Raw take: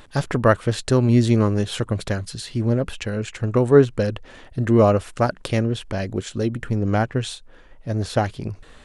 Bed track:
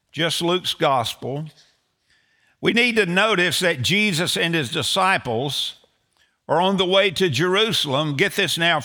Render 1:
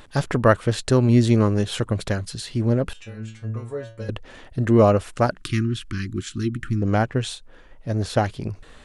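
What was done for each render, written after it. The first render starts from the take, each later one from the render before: 2.93–4.09 s: inharmonic resonator 110 Hz, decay 0.49 s, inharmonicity 0.002; 5.37–6.82 s: elliptic band-stop 340–1200 Hz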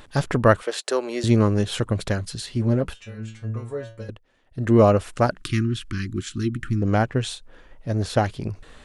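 0.62–1.24 s: high-pass 400 Hz 24 dB/octave; 2.46–3.19 s: comb of notches 160 Hz; 3.94–4.72 s: dip -21.5 dB, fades 0.26 s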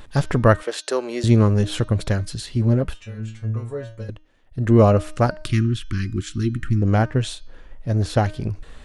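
bass shelf 110 Hz +9 dB; de-hum 308.2 Hz, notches 21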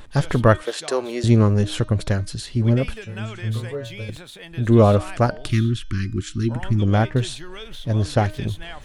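add bed track -19.5 dB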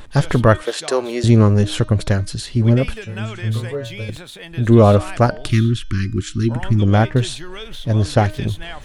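trim +4 dB; peak limiter -1 dBFS, peak gain reduction 3 dB

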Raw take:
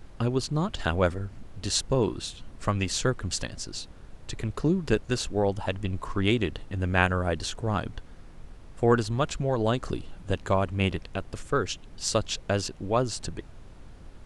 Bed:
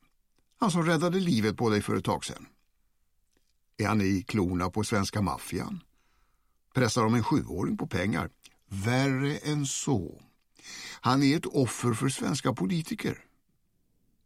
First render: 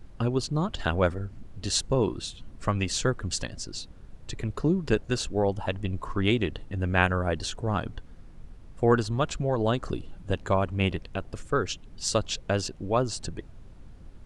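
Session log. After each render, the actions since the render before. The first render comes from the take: noise reduction 6 dB, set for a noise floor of -47 dBFS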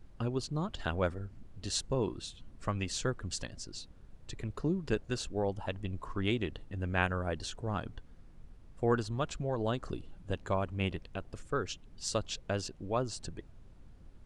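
trim -7.5 dB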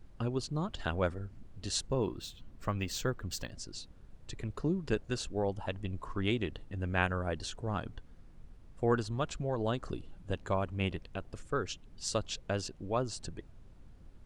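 1.87–3.51 s: decimation joined by straight lines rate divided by 2×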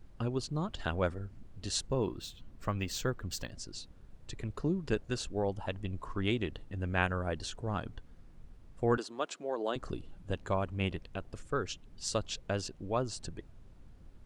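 8.97–9.76 s: high-pass 280 Hz 24 dB/octave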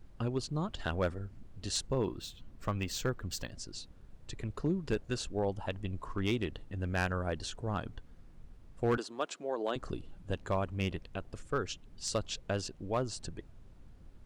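overload inside the chain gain 23 dB

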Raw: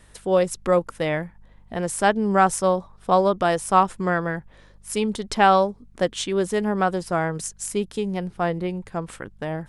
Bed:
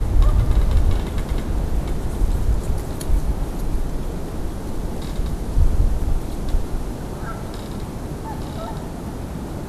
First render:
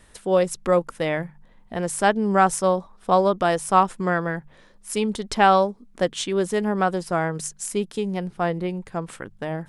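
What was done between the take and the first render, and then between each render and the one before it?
de-hum 50 Hz, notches 3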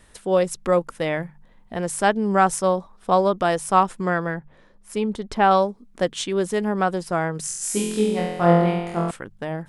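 4.34–5.51 s: treble shelf 2.7 kHz -10 dB; 7.45–9.11 s: flutter echo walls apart 4 m, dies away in 1.1 s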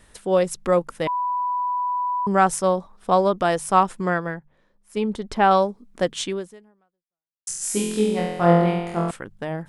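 1.07–2.27 s: bleep 989 Hz -21 dBFS; 4.14–4.97 s: upward expansion, over -40 dBFS; 6.30–7.47 s: fade out exponential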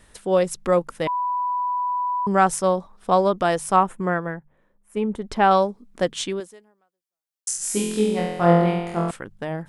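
3.76–5.24 s: peaking EQ 4.7 kHz -14.5 dB 1 oct; 6.40–7.57 s: tone controls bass -9 dB, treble +4 dB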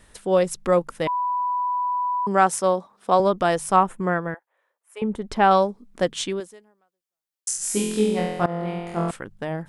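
1.67–3.20 s: high-pass 210 Hz; 4.34–5.02 s: Bessel high-pass 770 Hz, order 6; 8.46–9.09 s: fade in, from -20.5 dB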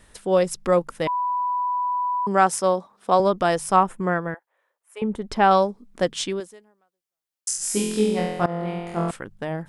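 dynamic bell 5.1 kHz, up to +5 dB, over -54 dBFS, Q 6.9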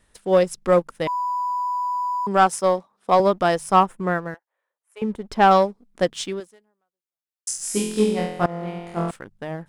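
waveshaping leveller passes 1; upward expansion 1.5:1, over -25 dBFS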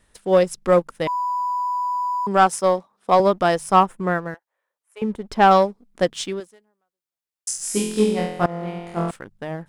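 trim +1 dB

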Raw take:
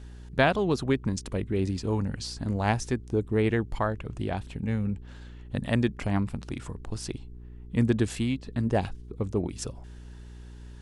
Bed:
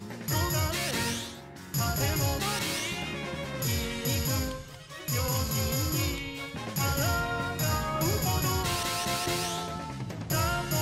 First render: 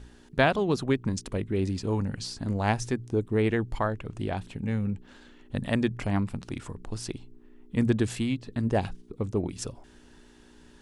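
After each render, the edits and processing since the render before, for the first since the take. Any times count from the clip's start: de-hum 60 Hz, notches 3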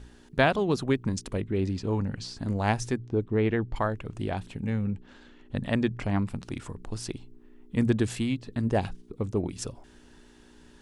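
1.41–2.37 s: distance through air 65 m; 2.98–3.76 s: distance through air 160 m; 4.70–6.21 s: distance through air 51 m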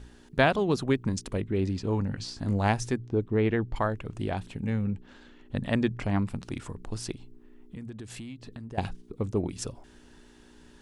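2.08–2.68 s: doubling 20 ms -9 dB; 7.14–8.78 s: compression, threshold -38 dBFS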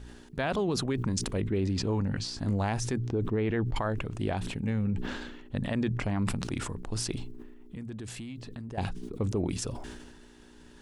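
peak limiter -20 dBFS, peak gain reduction 10.5 dB; decay stretcher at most 38 dB/s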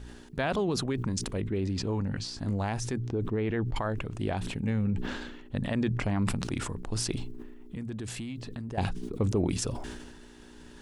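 gain riding within 4 dB 2 s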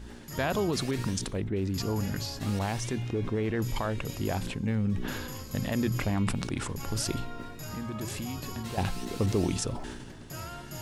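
add bed -12.5 dB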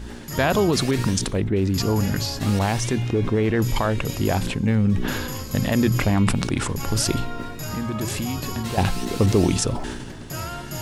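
trim +9 dB

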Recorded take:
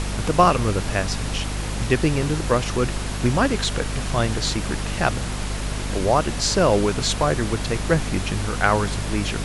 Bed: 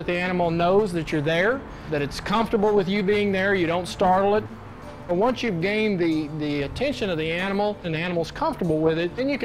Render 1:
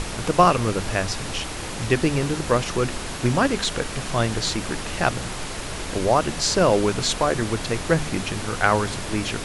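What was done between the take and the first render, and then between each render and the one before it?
hum notches 50/100/150/200/250 Hz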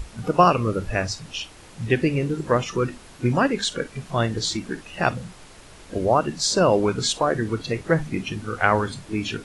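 noise print and reduce 15 dB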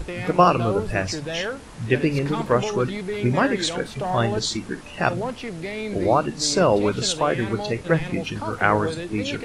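add bed -7.5 dB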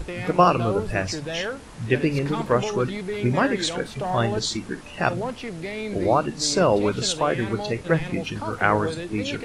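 trim -1 dB

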